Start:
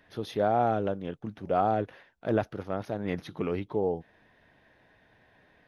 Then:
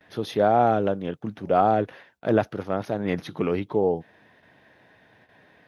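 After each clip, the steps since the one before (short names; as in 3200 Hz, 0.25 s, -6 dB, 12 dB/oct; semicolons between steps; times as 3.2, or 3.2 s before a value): HPF 98 Hz 12 dB/oct; gate with hold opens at -53 dBFS; gain +6 dB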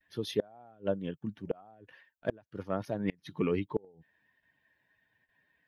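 per-bin expansion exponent 1.5; flipped gate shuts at -15 dBFS, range -32 dB; gain -1.5 dB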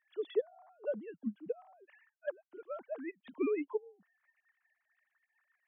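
sine-wave speech; gain -3.5 dB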